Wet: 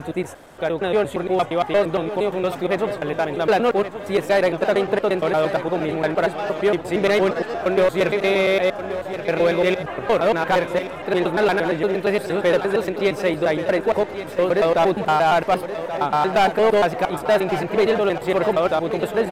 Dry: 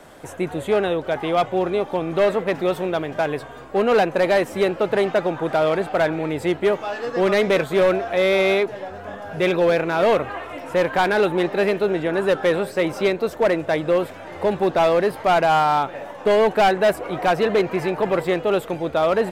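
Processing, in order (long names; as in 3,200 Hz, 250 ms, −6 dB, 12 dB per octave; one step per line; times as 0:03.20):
slices reordered back to front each 116 ms, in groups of 5
on a send: repeating echo 1,128 ms, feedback 42%, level −11 dB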